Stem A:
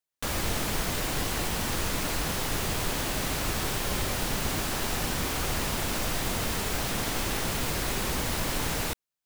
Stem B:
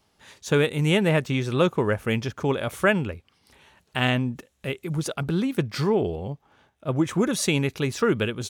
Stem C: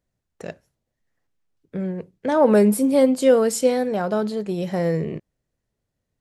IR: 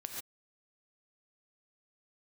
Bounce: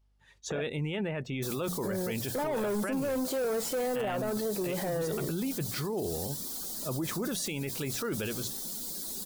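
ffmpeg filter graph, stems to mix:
-filter_complex "[0:a]lowshelf=frequency=150:width_type=q:width=3:gain=-8.5,aexciter=amount=3.9:drive=5.8:freq=3600,adelay=1200,volume=-15.5dB[link_01];[1:a]bandreject=frequency=60:width_type=h:width=6,bandreject=frequency=120:width_type=h:width=6,bandreject=frequency=180:width_type=h:width=6,volume=-2.5dB[link_02];[2:a]asplit=2[link_03][link_04];[link_04]highpass=frequency=720:poles=1,volume=26dB,asoftclip=type=tanh:threshold=-4.5dB[link_05];[link_03][link_05]amix=inputs=2:normalize=0,lowpass=frequency=1300:poles=1,volume=-6dB,adelay=100,volume=-10.5dB[link_06];[link_01][link_02]amix=inputs=2:normalize=0,aeval=exprs='val(0)+0.00112*(sin(2*PI*50*n/s)+sin(2*PI*2*50*n/s)/2+sin(2*PI*3*50*n/s)/3+sin(2*PI*4*50*n/s)/4+sin(2*PI*5*50*n/s)/5)':channel_layout=same,alimiter=limit=-21dB:level=0:latency=1:release=11,volume=0dB[link_07];[link_06][link_07]amix=inputs=2:normalize=0,afftdn=noise_reduction=16:noise_floor=-44,equalizer=frequency=69:width_type=o:width=2.1:gain=-3.5,alimiter=level_in=1dB:limit=-24dB:level=0:latency=1:release=13,volume=-1dB"

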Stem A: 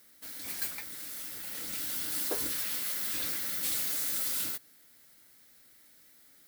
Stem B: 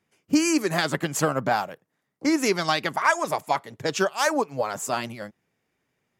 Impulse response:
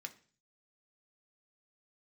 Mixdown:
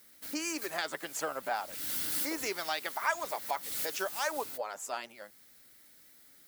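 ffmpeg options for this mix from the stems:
-filter_complex "[0:a]volume=0.5dB[link_01];[1:a]highpass=480,bandreject=frequency=1100:width=18,volume=-9.5dB,asplit=2[link_02][link_03];[link_03]apad=whole_len=285521[link_04];[link_01][link_04]sidechaincompress=threshold=-42dB:ratio=10:attack=5.5:release=298[link_05];[link_05][link_02]amix=inputs=2:normalize=0"

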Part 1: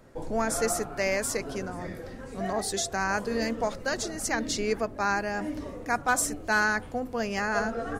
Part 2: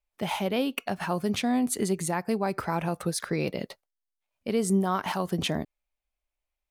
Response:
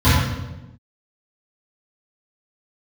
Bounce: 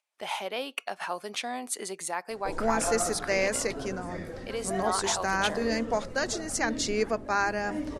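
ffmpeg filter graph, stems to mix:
-filter_complex "[0:a]bandreject=frequency=50:width_type=h:width=6,bandreject=frequency=100:width_type=h:width=6,bandreject=frequency=150:width_type=h:width=6,bandreject=frequency=200:width_type=h:width=6,adelay=2300,volume=0.5dB[link_01];[1:a]highpass=590,volume=-1dB[link_02];[link_01][link_02]amix=inputs=2:normalize=0,lowpass=frequency=11000:width=0.5412,lowpass=frequency=11000:width=1.3066,agate=range=-55dB:threshold=-49dB:ratio=16:detection=peak,acompressor=mode=upward:threshold=-43dB:ratio=2.5"

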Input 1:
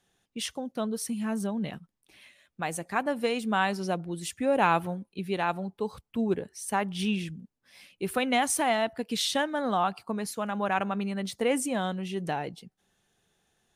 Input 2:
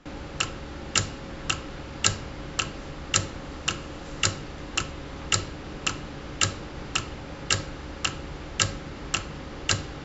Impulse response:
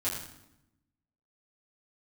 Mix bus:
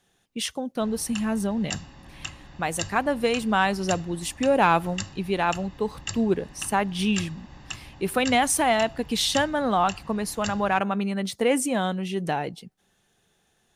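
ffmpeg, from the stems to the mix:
-filter_complex "[0:a]acontrast=82,volume=-2.5dB[link_01];[1:a]aecho=1:1:1.1:0.62,adelay=750,volume=-11dB[link_02];[link_01][link_02]amix=inputs=2:normalize=0"

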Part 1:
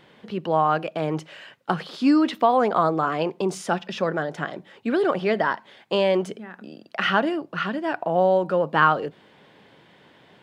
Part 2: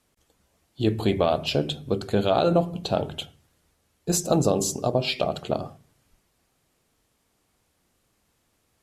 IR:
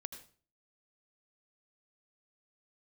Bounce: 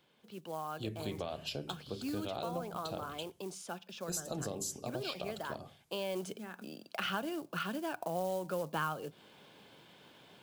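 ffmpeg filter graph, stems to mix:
-filter_complex "[0:a]bandreject=frequency=1900:width=5.5,acrusher=bits=6:mode=log:mix=0:aa=0.000001,volume=-6.5dB,afade=type=in:start_time=5.82:duration=0.65:silence=0.251189[link_01];[1:a]agate=range=-33dB:threshold=-57dB:ratio=3:detection=peak,volume=-15.5dB[link_02];[link_01][link_02]amix=inputs=2:normalize=0,highshelf=frequency=3500:gain=10,acrossover=split=130[link_03][link_04];[link_04]acompressor=threshold=-36dB:ratio=3[link_05];[link_03][link_05]amix=inputs=2:normalize=0"

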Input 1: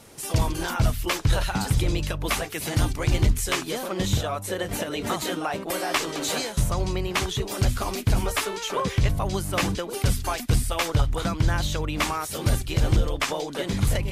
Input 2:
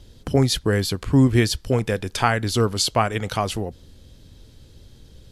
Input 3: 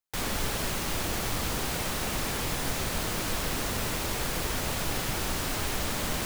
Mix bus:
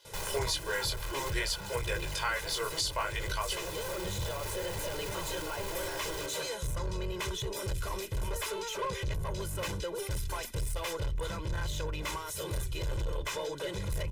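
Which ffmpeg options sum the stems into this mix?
ffmpeg -i stem1.wav -i stem2.wav -i stem3.wav -filter_complex "[0:a]bandreject=frequency=4600:width=13,adelay=50,volume=-2dB[link_01];[1:a]flanger=delay=16.5:depth=7.1:speed=0.56,highpass=870,volume=-1dB[link_02];[2:a]equalizer=frequency=780:width=6.2:gain=13,asoftclip=type=tanh:threshold=-30dB,volume=-1dB[link_03];[link_01][link_03]amix=inputs=2:normalize=0,asoftclip=type=tanh:threshold=-29dB,alimiter=level_in=10.5dB:limit=-24dB:level=0:latency=1:release=81,volume=-10.5dB,volume=0dB[link_04];[link_02][link_04]amix=inputs=2:normalize=0,aecho=1:1:2:0.95,alimiter=limit=-21dB:level=0:latency=1:release=482" out.wav

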